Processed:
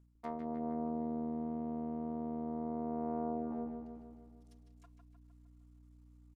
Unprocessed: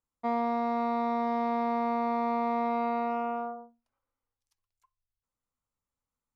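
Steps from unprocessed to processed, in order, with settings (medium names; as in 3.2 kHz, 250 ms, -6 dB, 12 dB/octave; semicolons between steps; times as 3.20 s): cycle switcher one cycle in 3, muted; comb 4.3 ms, depth 61%; hum 60 Hz, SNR 35 dB; reverse; compression 8:1, threshold -42 dBFS, peak gain reduction 18.5 dB; reverse; low-pass that closes with the level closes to 550 Hz, closed at -41.5 dBFS; on a send: filtered feedback delay 153 ms, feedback 59%, low-pass 4.5 kHz, level -5.5 dB; on the sum: trim +6.5 dB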